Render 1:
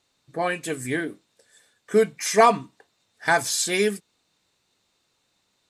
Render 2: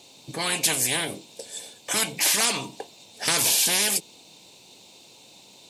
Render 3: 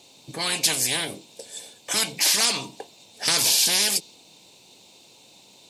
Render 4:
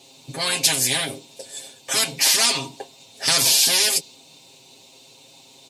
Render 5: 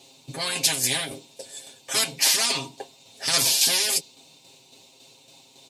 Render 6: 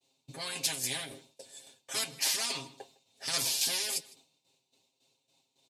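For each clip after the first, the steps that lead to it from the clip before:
HPF 140 Hz 12 dB/oct; band shelf 1500 Hz -14.5 dB 1 oct; spectral compressor 10:1; gain -2 dB
dynamic EQ 4800 Hz, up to +7 dB, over -39 dBFS, Q 1.6; gain -1.5 dB
comb 7.5 ms, depth 98%
tremolo saw down 3.6 Hz, depth 45%; gain -1.5 dB
outdoor echo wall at 27 m, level -20 dB; added harmonics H 3 -22 dB, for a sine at -4.5 dBFS; expander -46 dBFS; gain -8 dB

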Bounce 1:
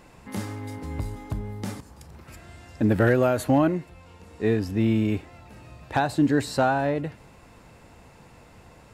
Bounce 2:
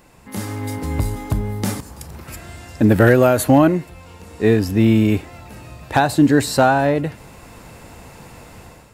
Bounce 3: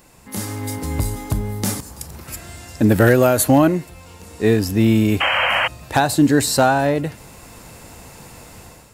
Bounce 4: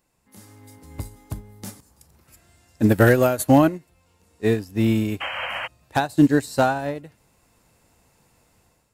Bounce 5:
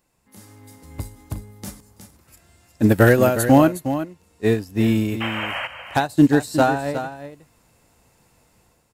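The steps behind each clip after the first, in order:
high shelf 9400 Hz +11 dB; AGC gain up to 10 dB
tone controls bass 0 dB, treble +7 dB; painted sound noise, 5.2–5.68, 490–3200 Hz -17 dBFS; gain -1 dB
upward expander 2.5:1, over -24 dBFS
echo 0.362 s -10.5 dB; gain +1.5 dB

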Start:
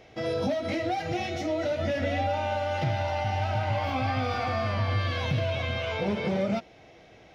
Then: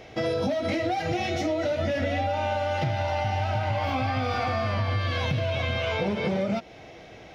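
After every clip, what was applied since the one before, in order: compressor 4:1, threshold -31 dBFS, peak gain reduction 7.5 dB; gain +7 dB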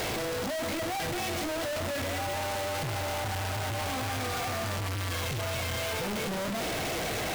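infinite clipping; gain -5 dB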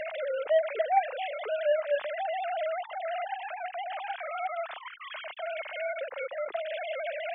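sine-wave speech

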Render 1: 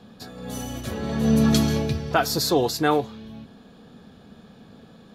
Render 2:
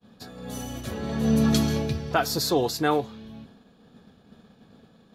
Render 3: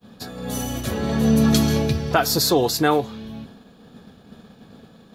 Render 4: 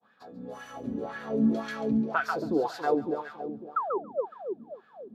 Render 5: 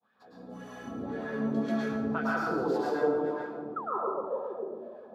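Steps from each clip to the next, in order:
expander -43 dBFS; gain -2.5 dB
high shelf 11000 Hz +6 dB; compressor 1.5:1, threshold -26 dBFS, peak gain reduction 3.5 dB; gain +7.5 dB
painted sound fall, 3.76–3.98, 350–1400 Hz -17 dBFS; split-band echo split 730 Hz, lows 0.276 s, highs 0.139 s, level -3.5 dB; wah 1.9 Hz 240–1700 Hz, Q 3.3; gain -2.5 dB
plate-style reverb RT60 1.1 s, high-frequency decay 0.55×, pre-delay 95 ms, DRR -5.5 dB; gain -8 dB

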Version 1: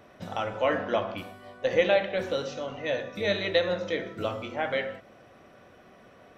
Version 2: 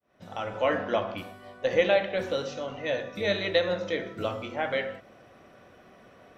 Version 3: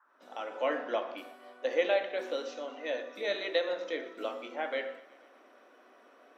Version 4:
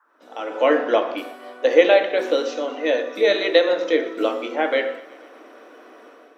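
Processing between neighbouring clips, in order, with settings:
opening faded in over 0.58 s
elliptic high-pass 260 Hz, stop band 50 dB; band noise 900–1600 Hz -63 dBFS; thinning echo 0.12 s, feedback 64%, level -20 dB; gain -5 dB
AGC gain up to 8 dB; small resonant body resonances 320/450 Hz, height 9 dB, ringing for 85 ms; gain +4.5 dB

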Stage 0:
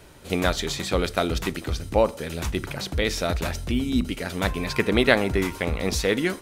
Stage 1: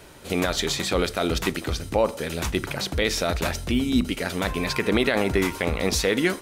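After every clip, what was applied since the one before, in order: low shelf 160 Hz -5.5 dB; limiter -13.5 dBFS, peak gain reduction 11.5 dB; gain +3.5 dB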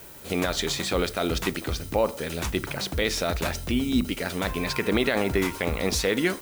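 added noise violet -45 dBFS; gain -2 dB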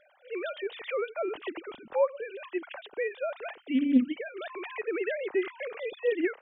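sine-wave speech; Doppler distortion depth 0.14 ms; gain -5 dB

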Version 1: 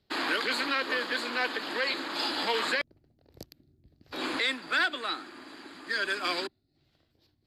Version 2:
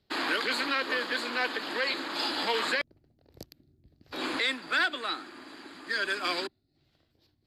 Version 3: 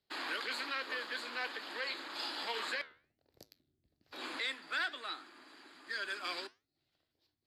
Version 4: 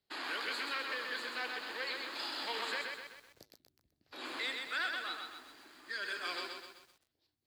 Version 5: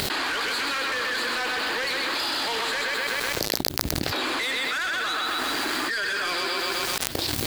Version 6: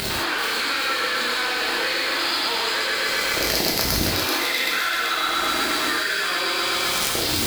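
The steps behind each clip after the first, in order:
nothing audible
low shelf 340 Hz -10.5 dB; flange 1.2 Hz, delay 7 ms, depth 7.2 ms, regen -82%; gain -4 dB
lo-fi delay 0.128 s, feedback 55%, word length 10-bit, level -4 dB; gain -1 dB
upward compressor, threshold -45 dBFS; sample leveller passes 3; fast leveller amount 100%; gain +1.5 dB
crossover distortion -37.5 dBFS; thin delay 0.385 s, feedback 59%, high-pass 1900 Hz, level -5 dB; reverb, pre-delay 3 ms, DRR -4 dB

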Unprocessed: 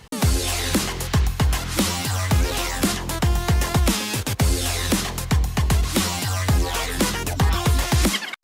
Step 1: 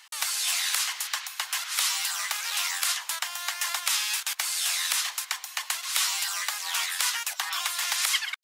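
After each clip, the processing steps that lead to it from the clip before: Bessel high-pass 1500 Hz, order 6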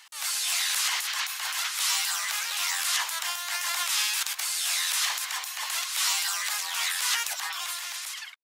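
ending faded out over 1.33 s; transient shaper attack -8 dB, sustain +11 dB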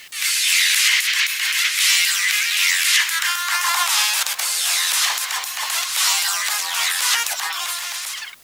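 high-pass sweep 2100 Hz -> 290 Hz, 2.96–4.86; in parallel at -5 dB: requantised 8-bit, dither triangular; on the sum: gain +4 dB

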